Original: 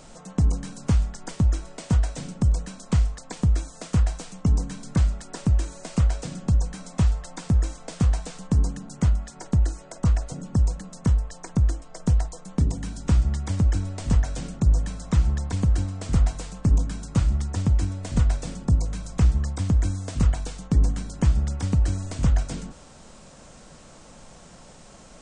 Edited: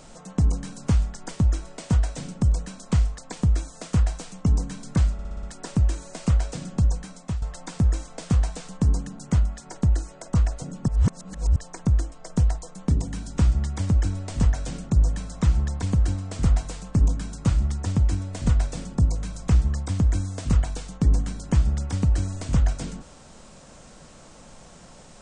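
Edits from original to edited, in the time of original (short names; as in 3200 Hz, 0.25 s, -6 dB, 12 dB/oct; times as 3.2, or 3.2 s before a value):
5.13 stutter 0.06 s, 6 plays
6.63–7.12 fade out, to -12 dB
10.58–11.26 reverse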